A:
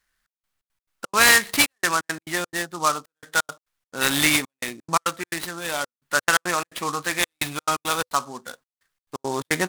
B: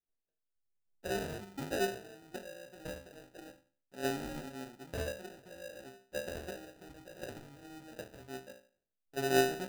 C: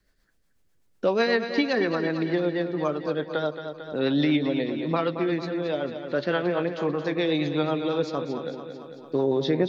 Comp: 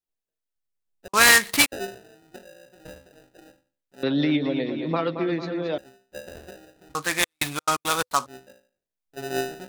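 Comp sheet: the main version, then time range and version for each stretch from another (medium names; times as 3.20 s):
B
1.08–1.72 s: from A
4.03–5.78 s: from C
6.95–8.26 s: from A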